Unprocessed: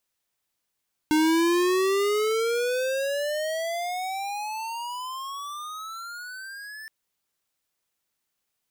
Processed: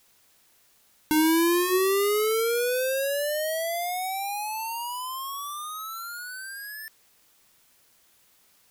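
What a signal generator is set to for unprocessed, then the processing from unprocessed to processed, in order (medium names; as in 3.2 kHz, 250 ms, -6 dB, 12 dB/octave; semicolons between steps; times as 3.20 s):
gliding synth tone square, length 5.77 s, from 305 Hz, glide +30.5 st, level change -20 dB, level -20 dB
peaking EQ 12 kHz +14.5 dB 0.46 oct; hum notches 60/120/180/240/300/360 Hz; added noise white -62 dBFS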